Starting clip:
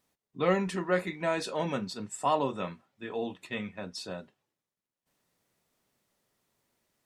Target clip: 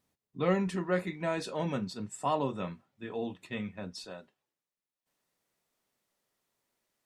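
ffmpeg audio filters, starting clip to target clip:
-af "asetnsamples=n=441:p=0,asendcmd='4.04 equalizer g -6.5',equalizer=f=86:w=0.35:g=7,volume=-4dB"

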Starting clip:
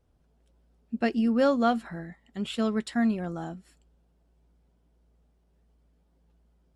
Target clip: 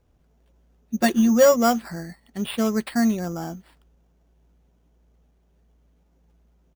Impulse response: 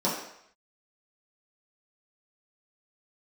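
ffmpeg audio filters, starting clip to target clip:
-filter_complex "[0:a]asplit=3[a][b][c];[a]afade=t=out:st=0.94:d=0.02[d];[b]aecho=1:1:5.5:0.88,afade=t=in:st=0.94:d=0.02,afade=t=out:st=1.55:d=0.02[e];[c]afade=t=in:st=1.55:d=0.02[f];[d][e][f]amix=inputs=3:normalize=0,acrusher=samples=7:mix=1:aa=0.000001,volume=4.5dB"

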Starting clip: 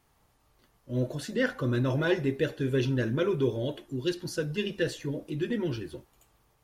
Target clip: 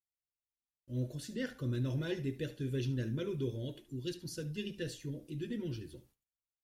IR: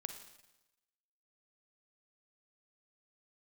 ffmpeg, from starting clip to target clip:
-af "agate=range=-36dB:threshold=-56dB:ratio=16:detection=peak,equalizer=f=960:t=o:w=2.5:g=-14,aecho=1:1:72:0.15,volume=-4.5dB"

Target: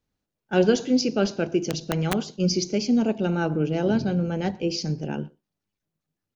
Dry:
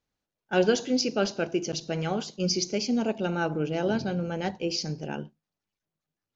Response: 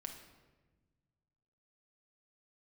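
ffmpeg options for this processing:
-filter_complex "[0:a]acrossover=split=390[a][b];[a]acontrast=62[c];[c][b]amix=inputs=2:normalize=0,asplit=2[d][e];[e]adelay=120,highpass=300,lowpass=3.4k,asoftclip=type=hard:threshold=-15dB,volume=-24dB[f];[d][f]amix=inputs=2:normalize=0,asettb=1/sr,asplit=3[g][h][i];[g]atrim=end=1.694[j];[h]atrim=start=1.69:end=2.25,asetpts=PTS-STARTPTS,afade=t=in:d=0.004:c=qsin,afade=t=out:st=0.556:d=0.004:c=qsin,aeval=exprs='(mod(5.96*val(0)+1,2)-1)/5.96':c=same[k];[i]atrim=start=2.246[l];[j][k]acrossfade=d=0.004:c1=hsin:c2=qsin[m];[m][l]acrossfade=d=0.004:c1=qsin:c2=hsin"

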